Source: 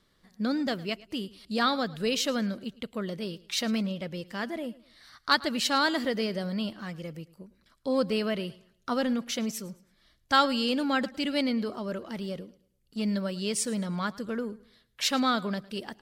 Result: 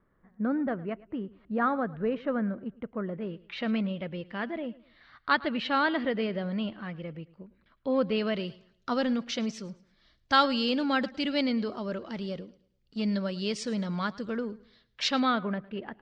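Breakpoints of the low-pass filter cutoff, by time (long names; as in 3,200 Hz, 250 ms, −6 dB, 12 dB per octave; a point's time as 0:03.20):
low-pass filter 24 dB per octave
0:03.05 1,700 Hz
0:03.71 3,100 Hz
0:08.01 3,100 Hz
0:08.41 5,400 Hz
0:15.06 5,400 Hz
0:15.50 2,400 Hz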